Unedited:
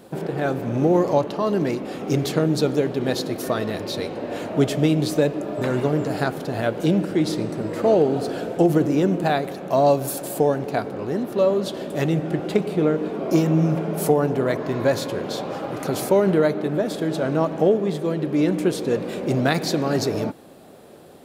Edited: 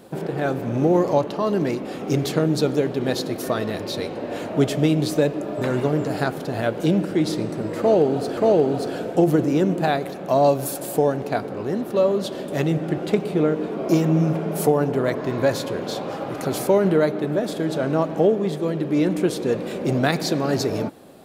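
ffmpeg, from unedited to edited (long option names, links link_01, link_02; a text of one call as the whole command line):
ffmpeg -i in.wav -filter_complex "[0:a]asplit=2[link_01][link_02];[link_01]atrim=end=8.372[link_03];[link_02]atrim=start=7.788[link_04];[link_03][link_04]acrossfade=duration=0.004:curve1=hsin:curve2=hsin" out.wav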